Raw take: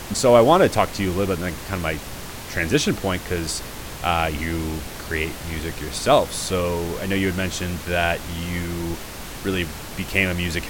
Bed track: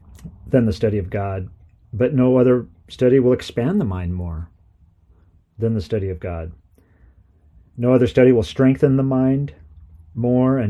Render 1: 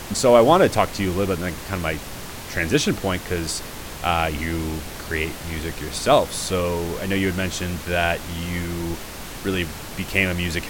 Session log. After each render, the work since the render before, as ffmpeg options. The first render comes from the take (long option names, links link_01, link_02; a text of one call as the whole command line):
ffmpeg -i in.wav -af "bandreject=frequency=60:width_type=h:width=4,bandreject=frequency=120:width_type=h:width=4" out.wav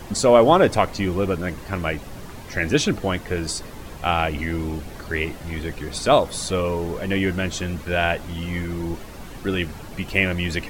ffmpeg -i in.wav -af "afftdn=noise_reduction=10:noise_floor=-35" out.wav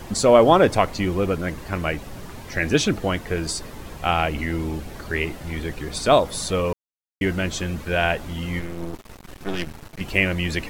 ffmpeg -i in.wav -filter_complex "[0:a]asettb=1/sr,asplit=3[link_01][link_02][link_03];[link_01]atrim=end=8.594[link_04];[link_02]atrim=start=8.59:end=10.01,asetpts=PTS-STARTPTS,afade=type=in:duration=0.004:curve=qsin,afade=type=out:start_time=1.416:duration=0.004:curve=qsin,aeval=exprs='max(val(0),0)':channel_layout=same[link_05];[link_03]atrim=start=10.006[link_06];[link_04][link_05]acrossfade=duration=0.004:curve1=hsin:curve2=qsin[link_07];[link_07][link_06]acrossfade=duration=0.004:curve1=qsin:curve2=hsin,asplit=3[link_08][link_09][link_10];[link_08]atrim=end=6.73,asetpts=PTS-STARTPTS,afade=type=out:start_time=6.726:duration=0.004:curve=hsin[link_11];[link_09]atrim=start=6.73:end=7.21,asetpts=PTS-STARTPTS,volume=0[link_12];[link_10]atrim=start=7.21,asetpts=PTS-STARTPTS,afade=type=in:duration=0.004:curve=hsin[link_13];[link_11][link_12][link_13]concat=n=3:v=0:a=1" out.wav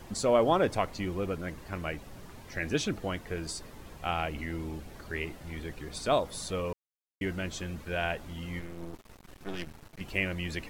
ffmpeg -i in.wav -af "volume=-10.5dB" out.wav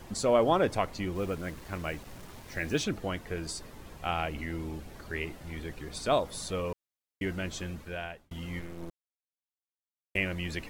ffmpeg -i in.wav -filter_complex "[0:a]asettb=1/sr,asplit=3[link_01][link_02][link_03];[link_01]atrim=end=1.154[link_04];[link_02]atrim=start=1.15:end=2.84,asetpts=PTS-STARTPTS,afade=type=in:duration=0.004:curve=qsin,afade=type=out:start_time=1.686:duration=0.004:curve=qsin,acrusher=bits=7:mix=0:aa=0.5[link_05];[link_03]atrim=start=2.836[link_06];[link_04][link_05]acrossfade=duration=0.004:curve1=hsin:curve2=qsin[link_07];[link_07][link_06]acrossfade=duration=0.004:curve1=qsin:curve2=hsin,asplit=4[link_08][link_09][link_10][link_11];[link_08]atrim=end=8.31,asetpts=PTS-STARTPTS,afade=type=out:start_time=7.67:duration=0.64[link_12];[link_09]atrim=start=8.31:end=8.9,asetpts=PTS-STARTPTS,afade=type=in:duration=0.004:curve=hsin,afade=type=out:start_time=0.586:duration=0.004:curve=hsin[link_13];[link_10]atrim=start=8.9:end=10.15,asetpts=PTS-STARTPTS,volume=0[link_14];[link_11]atrim=start=10.15,asetpts=PTS-STARTPTS,afade=type=in:duration=0.004:curve=hsin[link_15];[link_12][link_13][link_14][link_15]concat=n=4:v=0:a=1" out.wav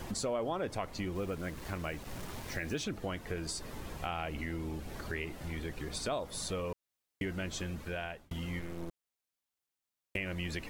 ffmpeg -i in.wav -filter_complex "[0:a]asplit=2[link_01][link_02];[link_02]alimiter=limit=-23.5dB:level=0:latency=1,volume=-1dB[link_03];[link_01][link_03]amix=inputs=2:normalize=0,acompressor=threshold=-38dB:ratio=2.5" out.wav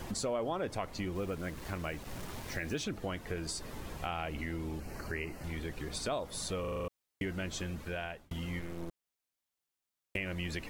ffmpeg -i in.wav -filter_complex "[0:a]asettb=1/sr,asplit=3[link_01][link_02][link_03];[link_01]atrim=end=4.804[link_04];[link_02]atrim=start=4.8:end=5.44,asetpts=PTS-STARTPTS,afade=type=in:duration=0.004:curve=qsin,afade=type=out:start_time=0.636:duration=0.004:curve=qsin,asuperstop=centerf=3500:order=4:qfactor=3.1[link_05];[link_03]atrim=start=5.436[link_06];[link_04][link_05]acrossfade=duration=0.004:curve1=hsin:curve2=qsin[link_07];[link_07][link_06]acrossfade=duration=0.004:curve1=qsin:curve2=hsin,asplit=8[link_08][link_09][link_10][link_11][link_12][link_13][link_14][link_15];[link_08]atrim=end=6.642[link_16];[link_09]atrim=start=6.598:end=6.642[link_17];[link_10]atrim=start=6.598:end=6.642[link_18];[link_11]atrim=start=6.598:end=6.642[link_19];[link_12]atrim=start=6.598:end=6.642[link_20];[link_13]atrim=start=6.598:end=6.642[link_21];[link_14]atrim=start=6.598:end=6.642[link_22];[link_15]atrim=start=6.878[link_23];[link_16][link_17]acrossfade=duration=0.004:curve1=hsin:curve2=hsin[link_24];[link_24][link_18]acrossfade=duration=0.004:curve1=hsin:curve2=hsin[link_25];[link_25][link_19]acrossfade=duration=0.004:curve1=hsin:curve2=hsin[link_26];[link_26][link_20]acrossfade=duration=0.004:curve1=hsin:curve2=hsin[link_27];[link_27][link_21]acrossfade=duration=0.004:curve1=hsin:curve2=hsin[link_28];[link_28][link_22]acrossfade=duration=0.004:curve1=hsin:curve2=hsin[link_29];[link_29][link_23]acrossfade=duration=0.004:curve1=hsin:curve2=hsin" out.wav